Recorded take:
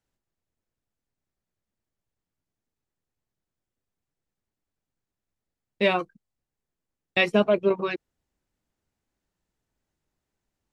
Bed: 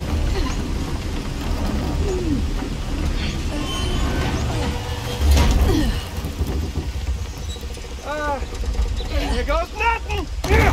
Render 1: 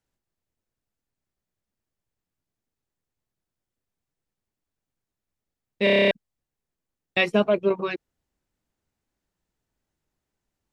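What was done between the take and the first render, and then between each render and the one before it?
5.84 s: stutter in place 0.03 s, 9 plays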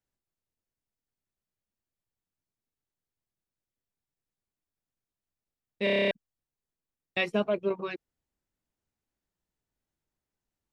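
trim -7 dB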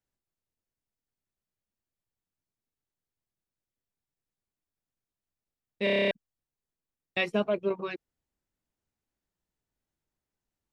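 no audible change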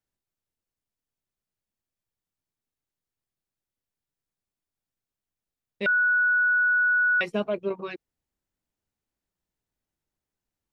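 5.86–7.21 s: bleep 1.47 kHz -18.5 dBFS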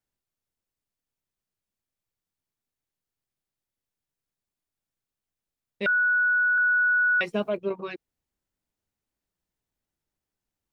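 5.87–6.58 s: elliptic low-pass 2.4 kHz; 7.09–7.57 s: word length cut 12-bit, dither none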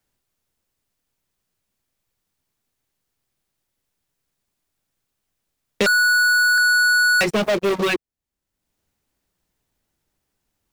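waveshaping leveller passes 5; three bands compressed up and down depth 70%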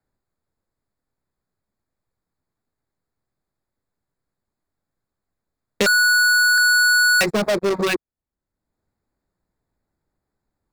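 local Wiener filter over 15 samples; treble shelf 5 kHz +9.5 dB

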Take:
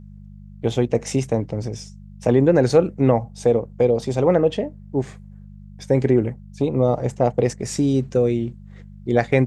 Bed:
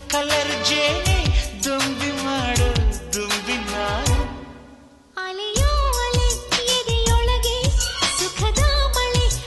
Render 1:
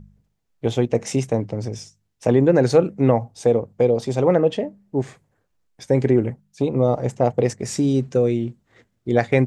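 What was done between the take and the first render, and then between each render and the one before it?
de-hum 50 Hz, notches 4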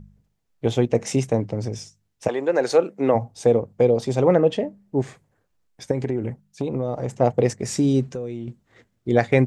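2.27–3.14 s: high-pass 690 Hz -> 280 Hz; 5.91–7.21 s: compression 4:1, threshold -21 dBFS; 8.07–8.48 s: compression 3:1, threshold -30 dBFS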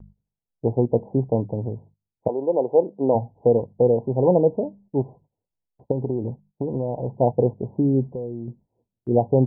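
Chebyshev low-pass 1 kHz, order 10; gate -50 dBFS, range -15 dB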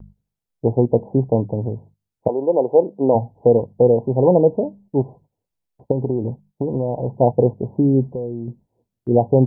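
trim +4 dB; peak limiter -3 dBFS, peak gain reduction 1.5 dB

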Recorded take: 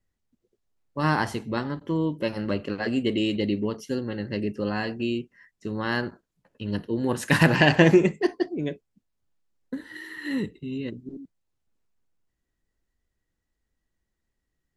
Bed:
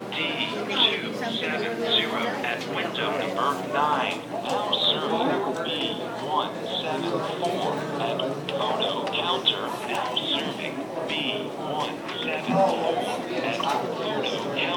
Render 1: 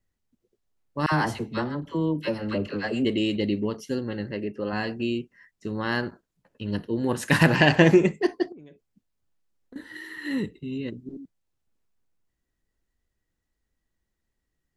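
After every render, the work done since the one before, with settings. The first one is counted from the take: 1.06–3.05 s: phase dispersion lows, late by 62 ms, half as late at 830 Hz; 4.31–4.73 s: tone controls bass -7 dB, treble -13 dB; 8.52–9.76 s: compression 10:1, threshold -44 dBFS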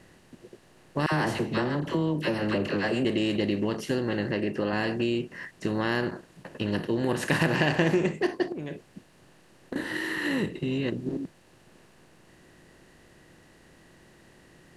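spectral levelling over time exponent 0.6; compression 2:1, threshold -27 dBFS, peak gain reduction 9.5 dB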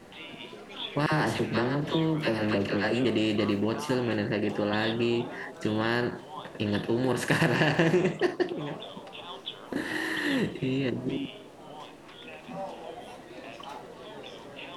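add bed -16.5 dB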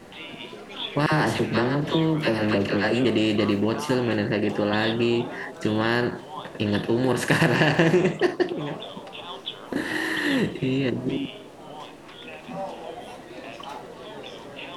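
trim +4.5 dB

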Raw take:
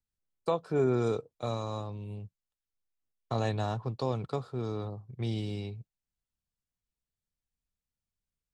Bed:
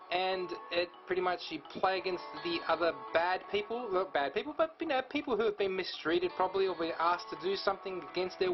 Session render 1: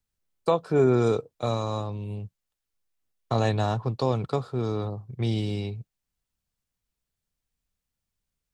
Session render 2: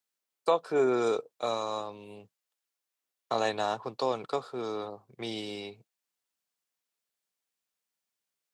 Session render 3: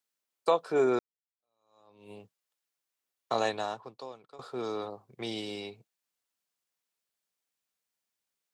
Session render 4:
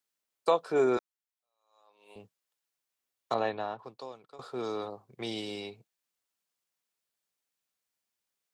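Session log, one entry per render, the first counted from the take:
trim +6.5 dB
high-pass 340 Hz 12 dB/octave; bass shelf 450 Hz -4.5 dB
0.99–2.11 s: fade in exponential; 3.43–4.39 s: fade out quadratic, to -20.5 dB
0.97–2.16 s: high-pass 660 Hz; 3.34–3.79 s: distance through air 310 m

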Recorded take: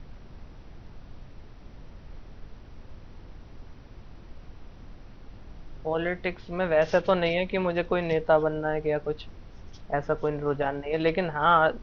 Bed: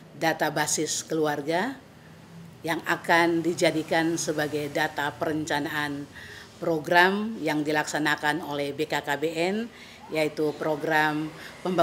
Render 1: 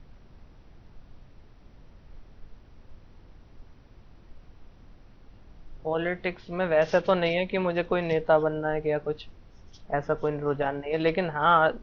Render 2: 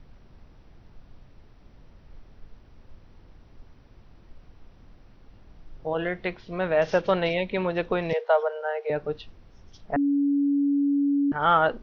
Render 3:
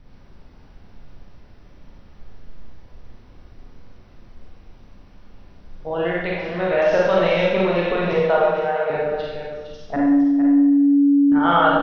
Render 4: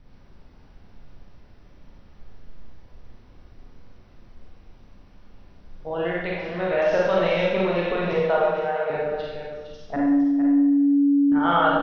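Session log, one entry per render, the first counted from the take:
noise print and reduce 6 dB
8.13–8.90 s: steep high-pass 440 Hz 72 dB/octave; 9.96–11.32 s: bleep 283 Hz -19.5 dBFS
on a send: delay 459 ms -9 dB; on the sum: Schroeder reverb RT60 1.1 s, combs from 31 ms, DRR -4.5 dB
trim -3.5 dB

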